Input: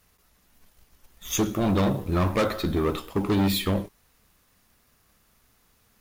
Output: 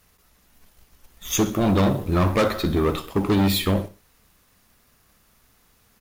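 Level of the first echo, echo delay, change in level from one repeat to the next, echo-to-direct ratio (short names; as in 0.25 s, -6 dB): -17.0 dB, 63 ms, -7.0 dB, -16.0 dB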